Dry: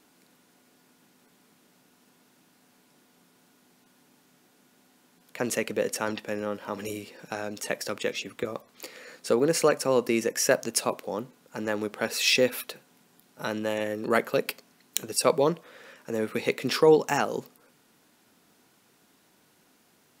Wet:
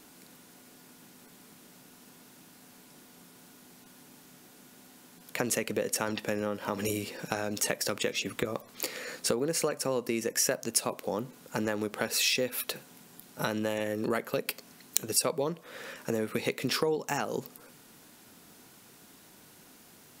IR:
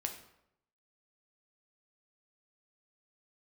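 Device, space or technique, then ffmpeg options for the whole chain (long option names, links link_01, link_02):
ASMR close-microphone chain: -af "lowshelf=frequency=120:gain=7.5,acompressor=threshold=-33dB:ratio=6,highshelf=frequency=6100:gain=6,volume=5.5dB"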